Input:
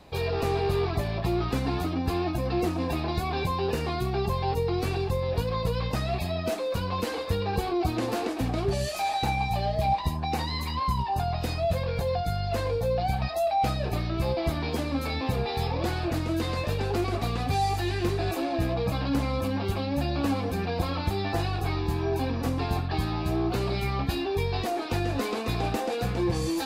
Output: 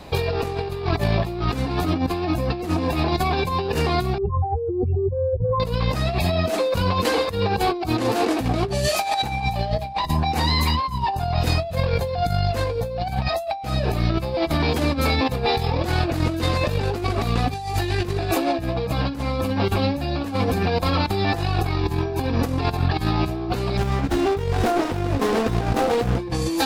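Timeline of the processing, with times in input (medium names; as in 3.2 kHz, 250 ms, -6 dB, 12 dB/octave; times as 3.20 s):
4.18–5.60 s: spectral contrast enhancement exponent 3.8
7.39–9.27 s: high-pass 54 Hz 6 dB/octave
23.77–26.19 s: sliding maximum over 17 samples
whole clip: compressor with a negative ratio -30 dBFS, ratio -0.5; trim +8.5 dB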